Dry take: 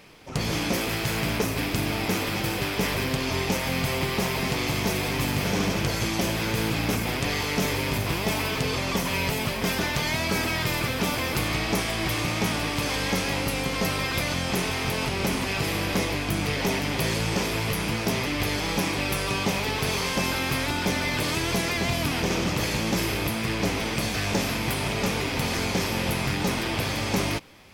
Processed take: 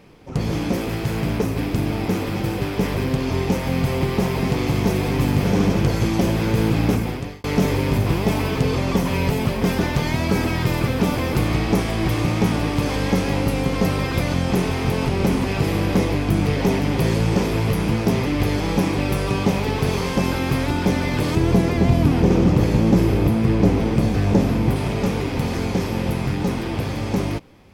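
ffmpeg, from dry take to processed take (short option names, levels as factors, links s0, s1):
-filter_complex "[0:a]asettb=1/sr,asplit=3[s0][s1][s2];[s0]atrim=end=21.354[s3];[s1]atrim=start=21.35:end=24.76,asetpts=PTS-STARTPTS,afade=t=in:d=0.004:c=qsin,afade=t=out:st=3.406:d=0.004:c=qsin,tiltshelf=f=970:g=4[s4];[s2]atrim=start=24.756[s5];[s3][s4]acrossfade=d=0.004:c1=hsin:c2=qsin[s6];[s6][s5]acrossfade=d=0.004:c1=qsin:c2=hsin,asplit=2[s7][s8];[s7]atrim=end=7.44,asetpts=PTS-STARTPTS,afade=t=out:st=6.89:d=0.55[s9];[s8]atrim=start=7.44,asetpts=PTS-STARTPTS,afade=t=in:d=0.004:c=hsin[s10];[s9][s10]concat=n=2:v=0:a=1,tiltshelf=f=970:g=6.5,bandreject=f=630:w=16,dynaudnorm=f=850:g=9:m=1.41"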